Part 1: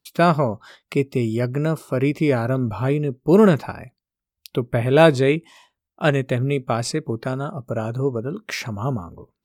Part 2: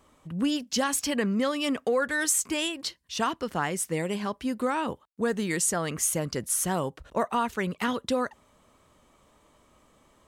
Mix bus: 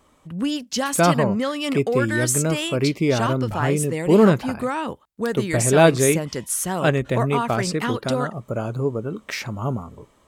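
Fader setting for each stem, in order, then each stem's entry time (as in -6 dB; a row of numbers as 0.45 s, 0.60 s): -1.0 dB, +2.5 dB; 0.80 s, 0.00 s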